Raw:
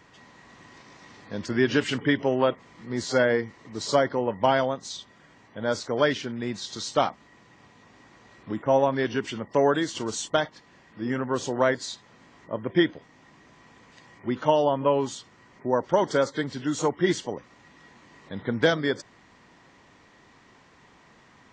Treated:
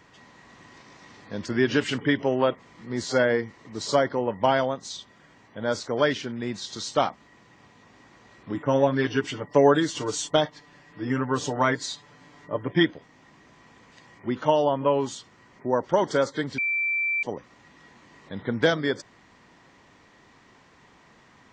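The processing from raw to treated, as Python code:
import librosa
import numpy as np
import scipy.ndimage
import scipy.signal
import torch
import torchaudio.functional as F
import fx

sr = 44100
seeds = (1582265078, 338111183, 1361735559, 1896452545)

y = fx.comb(x, sr, ms=6.8, depth=0.79, at=(8.54, 12.85))
y = fx.edit(y, sr, fx.bleep(start_s=16.58, length_s=0.65, hz=2340.0, db=-22.5), tone=tone)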